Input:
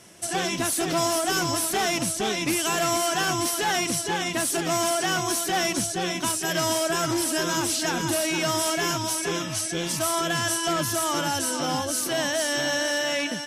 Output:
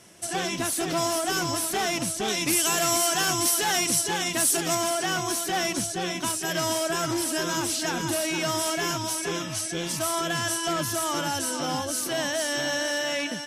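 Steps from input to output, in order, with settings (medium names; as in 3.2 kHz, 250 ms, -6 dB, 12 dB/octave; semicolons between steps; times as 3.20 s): 2.28–4.75 s: treble shelf 4.6 kHz +8.5 dB; trim -2 dB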